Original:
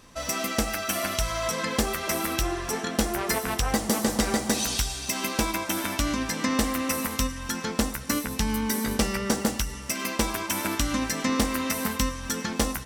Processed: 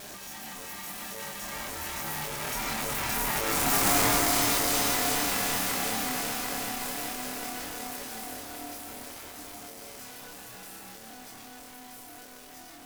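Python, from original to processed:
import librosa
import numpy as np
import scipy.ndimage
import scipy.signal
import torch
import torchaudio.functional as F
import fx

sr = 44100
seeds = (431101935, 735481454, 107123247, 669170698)

p1 = np.sign(x) * np.sqrt(np.mean(np.square(x)))
p2 = fx.doppler_pass(p1, sr, speed_mps=21, closest_m=5.6, pass_at_s=3.92)
p3 = scipy.signal.sosfilt(scipy.signal.butter(2, 57.0, 'highpass', fs=sr, output='sos'), p2)
p4 = fx.high_shelf(p3, sr, hz=8800.0, db=6.5)
p5 = fx.rider(p4, sr, range_db=5, speed_s=0.5)
p6 = p4 + (p5 * librosa.db_to_amplitude(-1.0))
p7 = fx.dynamic_eq(p6, sr, hz=1600.0, q=2.6, threshold_db=-49.0, ratio=4.0, max_db=6)
p8 = p7 * np.sin(2.0 * np.pi * 500.0 * np.arange(len(p7)) / sr)
p9 = fx.doubler(p8, sr, ms=27.0, db=-3.0)
p10 = p9 + fx.echo_diffused(p9, sr, ms=899, feedback_pct=46, wet_db=-12.5, dry=0)
y = fx.echo_crushed(p10, sr, ms=374, feedback_pct=80, bits=8, wet_db=-5)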